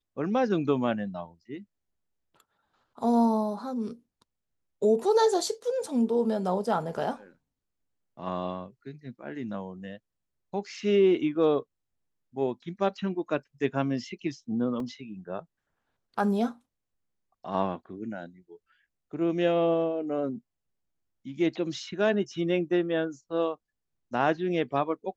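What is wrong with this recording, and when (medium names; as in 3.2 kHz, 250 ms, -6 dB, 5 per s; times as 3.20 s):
14.80 s: dropout 2.1 ms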